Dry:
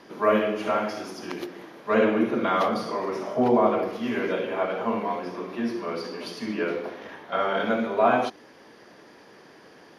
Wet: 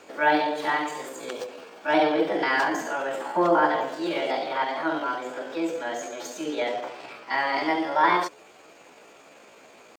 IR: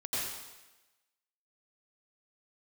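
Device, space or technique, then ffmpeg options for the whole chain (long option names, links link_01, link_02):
chipmunk voice: -filter_complex "[0:a]asetrate=62367,aresample=44100,atempo=0.707107,asettb=1/sr,asplit=3[link_01][link_02][link_03];[link_01]atrim=end=1.124[link_04];[link_02]atrim=start=1.12:end=2.22,asetpts=PTS-STARTPTS,afade=type=in:duration=0.004:curve=qsin,afade=type=out:start_time=1.096:duration=0.004:curve=qsin,bandreject=frequency=2000:width=12[link_05];[link_03]atrim=start=2.216[link_06];[link_04][link_05]acrossfade=duration=0.004:curve1=hsin:curve2=qsin[link_07];[link_07][link_06]acrossfade=duration=0.004:curve1=qsin:curve2=hsin"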